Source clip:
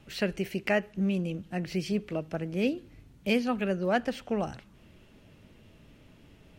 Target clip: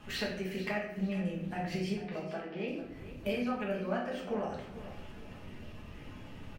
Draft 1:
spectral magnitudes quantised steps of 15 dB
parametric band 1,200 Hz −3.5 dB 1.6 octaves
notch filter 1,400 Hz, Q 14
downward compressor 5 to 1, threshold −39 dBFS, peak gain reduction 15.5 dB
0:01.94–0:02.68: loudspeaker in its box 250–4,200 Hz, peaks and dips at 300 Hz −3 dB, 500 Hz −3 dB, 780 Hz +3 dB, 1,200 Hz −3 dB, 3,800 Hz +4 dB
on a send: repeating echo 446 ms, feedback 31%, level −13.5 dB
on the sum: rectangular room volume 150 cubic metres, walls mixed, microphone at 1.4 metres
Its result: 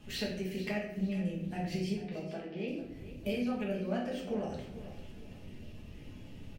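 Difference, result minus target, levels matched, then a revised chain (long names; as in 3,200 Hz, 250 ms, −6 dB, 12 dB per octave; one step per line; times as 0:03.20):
1,000 Hz band −4.5 dB
spectral magnitudes quantised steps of 15 dB
parametric band 1,200 Hz +8.5 dB 1.6 octaves
notch filter 1,400 Hz, Q 14
downward compressor 5 to 1, threshold −39 dBFS, peak gain reduction 19 dB
0:01.94–0:02.68: loudspeaker in its box 250–4,200 Hz, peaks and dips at 300 Hz −3 dB, 500 Hz −3 dB, 780 Hz +3 dB, 1,200 Hz −3 dB, 3,800 Hz +4 dB
on a send: repeating echo 446 ms, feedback 31%, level −13.5 dB
on the sum: rectangular room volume 150 cubic metres, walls mixed, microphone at 1.4 metres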